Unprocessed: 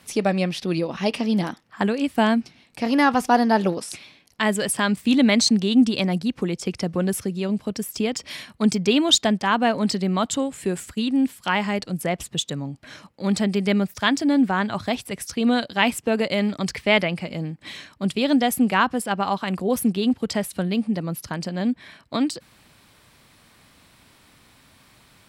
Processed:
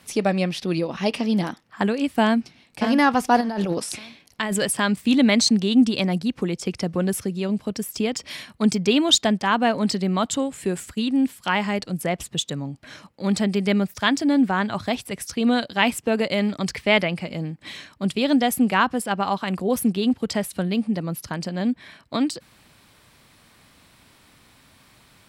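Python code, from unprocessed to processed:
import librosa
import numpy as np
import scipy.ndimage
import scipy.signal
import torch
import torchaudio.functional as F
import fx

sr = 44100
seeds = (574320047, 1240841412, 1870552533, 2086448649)

y = fx.echo_throw(x, sr, start_s=2.23, length_s=0.59, ms=580, feedback_pct=25, wet_db=-6.0)
y = fx.over_compress(y, sr, threshold_db=-24.0, ratio=-1.0, at=(3.4, 4.64), fade=0.02)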